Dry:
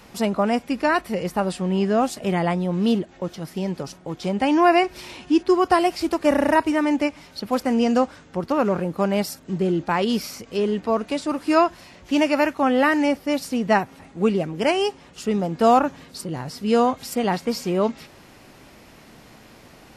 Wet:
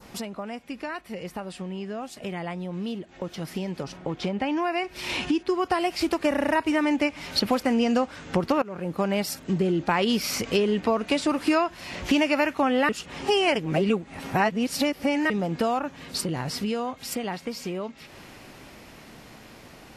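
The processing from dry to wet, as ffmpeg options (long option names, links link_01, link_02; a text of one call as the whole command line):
ffmpeg -i in.wav -filter_complex "[0:a]asettb=1/sr,asplit=3[link_01][link_02][link_03];[link_01]atrim=end=3.844[link_04];[link_02]atrim=start=3.84:end=4.57,asetpts=PTS-STARTPTS,afade=type=in:duration=0.004:curve=qsin,afade=type=out:start_time=0.726:duration=0.004:curve=qsin,aemphasis=mode=reproduction:type=50fm[link_05];[link_03]atrim=start=4.566[link_06];[link_04][link_05]acrossfade=duration=0.004:curve1=hsin:curve2=qsin[link_07];[link_07][link_06]acrossfade=duration=0.004:curve1=qsin:curve2=hsin,asplit=4[link_08][link_09][link_10][link_11];[link_08]atrim=end=8.62,asetpts=PTS-STARTPTS,afade=type=out:start_time=8.616:duration=0.004:curve=hsin:silence=0.125893[link_12];[link_09]atrim=start=8.62:end=12.892,asetpts=PTS-STARTPTS,afade=type=in:duration=2.71:silence=0.125893[link_13];[link_10]atrim=start=12.888:end=15.302,asetpts=PTS-STARTPTS,areverse[link_14];[link_11]atrim=start=15.298[link_15];[link_12][link_13]concat=n=2:v=0:a=1[link_16];[link_16][link_14]acrossfade=duration=0.004:curve1=hsin:curve2=hsin[link_17];[link_17][link_15]acrossfade=duration=0.004:curve1=hsin:curve2=hsin,acompressor=threshold=-33dB:ratio=6,adynamicequalizer=threshold=0.00224:dfrequency=2500:dqfactor=1.1:tfrequency=2500:tqfactor=1.1:attack=5:release=100:ratio=0.375:range=2.5:mode=boostabove:tftype=bell,dynaudnorm=framelen=450:gausssize=21:maxgain=12dB" out.wav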